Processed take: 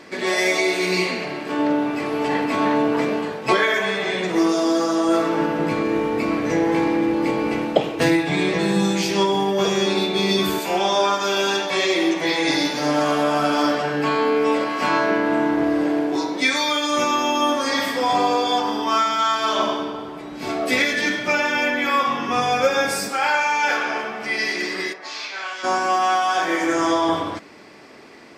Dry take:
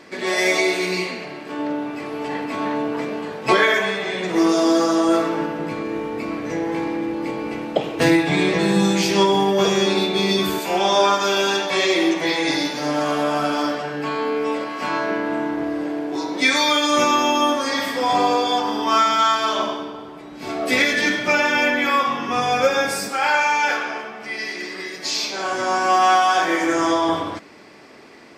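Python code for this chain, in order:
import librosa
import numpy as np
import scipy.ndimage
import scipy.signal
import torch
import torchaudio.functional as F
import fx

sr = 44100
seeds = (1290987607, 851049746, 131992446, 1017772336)

y = fx.rider(x, sr, range_db=5, speed_s=0.5)
y = fx.bandpass_q(y, sr, hz=fx.line((24.92, 810.0), (25.63, 3300.0)), q=1.4, at=(24.92, 25.63), fade=0.02)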